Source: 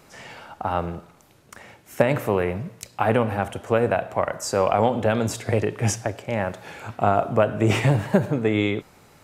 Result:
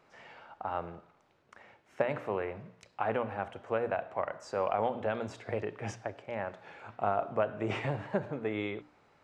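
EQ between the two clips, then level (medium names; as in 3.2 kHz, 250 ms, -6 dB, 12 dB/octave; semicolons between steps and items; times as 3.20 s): tape spacing loss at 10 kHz 26 dB; bass shelf 360 Hz -12 dB; hum notches 60/120/180/240/300 Hz; -5.5 dB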